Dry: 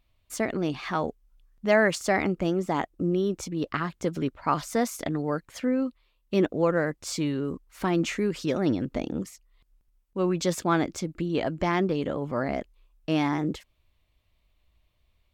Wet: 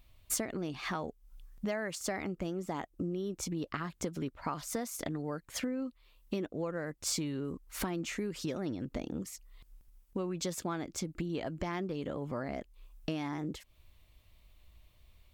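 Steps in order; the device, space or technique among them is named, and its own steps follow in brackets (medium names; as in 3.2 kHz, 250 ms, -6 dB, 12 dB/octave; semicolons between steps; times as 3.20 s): ASMR close-microphone chain (bass shelf 150 Hz +3.5 dB; compression 6:1, threshold -39 dBFS, peak gain reduction 21.5 dB; treble shelf 6.3 kHz +7.5 dB); trim +4.5 dB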